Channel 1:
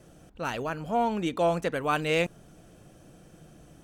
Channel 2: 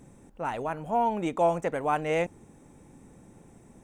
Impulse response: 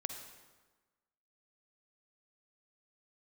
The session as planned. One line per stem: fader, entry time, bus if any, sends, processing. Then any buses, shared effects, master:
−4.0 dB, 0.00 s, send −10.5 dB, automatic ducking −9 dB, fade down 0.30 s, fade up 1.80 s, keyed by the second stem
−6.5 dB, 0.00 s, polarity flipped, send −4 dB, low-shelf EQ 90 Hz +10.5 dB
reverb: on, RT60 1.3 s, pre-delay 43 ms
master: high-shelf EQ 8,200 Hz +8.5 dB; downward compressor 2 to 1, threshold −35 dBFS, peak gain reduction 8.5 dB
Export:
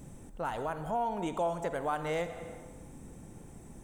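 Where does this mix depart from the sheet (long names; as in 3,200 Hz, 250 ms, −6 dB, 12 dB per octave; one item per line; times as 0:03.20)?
stem 1 −4.0 dB → −11.5 dB
reverb return +6.5 dB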